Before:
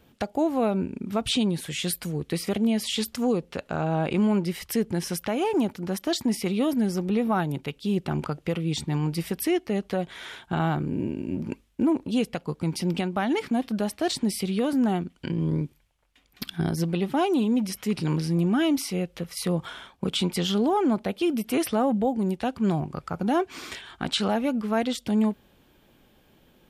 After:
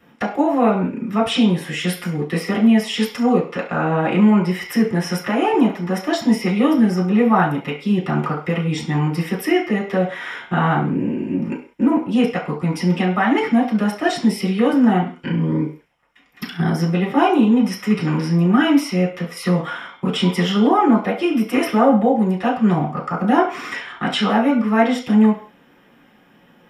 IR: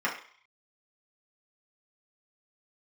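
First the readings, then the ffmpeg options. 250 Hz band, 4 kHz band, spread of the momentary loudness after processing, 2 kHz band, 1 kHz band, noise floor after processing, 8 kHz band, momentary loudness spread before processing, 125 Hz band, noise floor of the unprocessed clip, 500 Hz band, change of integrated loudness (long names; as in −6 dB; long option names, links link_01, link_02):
+8.5 dB, +4.0 dB, 8 LU, +11.0 dB, +10.0 dB, −52 dBFS, −1.0 dB, 7 LU, +7.5 dB, −61 dBFS, +7.0 dB, +8.0 dB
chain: -filter_complex "[1:a]atrim=start_sample=2205,afade=type=out:start_time=0.26:duration=0.01,atrim=end_sample=11907[link_01];[0:a][link_01]afir=irnorm=-1:irlink=0"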